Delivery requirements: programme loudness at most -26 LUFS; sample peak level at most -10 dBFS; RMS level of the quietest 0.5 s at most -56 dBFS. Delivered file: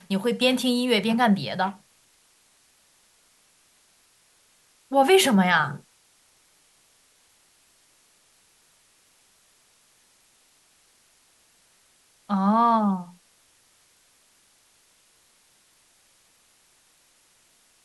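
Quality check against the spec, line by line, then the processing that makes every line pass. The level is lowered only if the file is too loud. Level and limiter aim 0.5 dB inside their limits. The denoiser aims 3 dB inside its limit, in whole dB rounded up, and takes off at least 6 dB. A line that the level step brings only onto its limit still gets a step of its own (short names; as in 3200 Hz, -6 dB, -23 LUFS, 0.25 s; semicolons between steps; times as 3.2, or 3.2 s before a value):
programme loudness -22.0 LUFS: fail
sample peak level -6.5 dBFS: fail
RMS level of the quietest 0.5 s -62 dBFS: OK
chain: gain -4.5 dB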